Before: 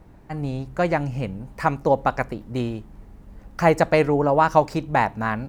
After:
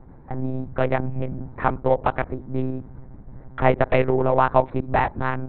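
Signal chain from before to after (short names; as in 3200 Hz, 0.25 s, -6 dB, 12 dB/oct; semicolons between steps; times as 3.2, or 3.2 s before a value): Wiener smoothing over 15 samples; in parallel at -1 dB: compressor, threshold -27 dBFS, peak gain reduction 16 dB; on the sum: monotone LPC vocoder at 8 kHz 130 Hz; gain -2 dB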